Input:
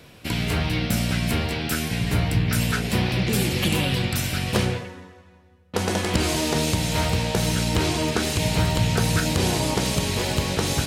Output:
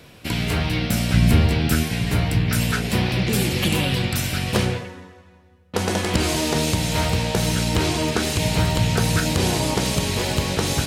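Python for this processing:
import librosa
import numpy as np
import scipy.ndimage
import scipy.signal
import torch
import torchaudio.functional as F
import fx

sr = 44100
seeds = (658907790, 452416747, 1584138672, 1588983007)

y = fx.low_shelf(x, sr, hz=240.0, db=10.5, at=(1.14, 1.83))
y = y * librosa.db_to_amplitude(1.5)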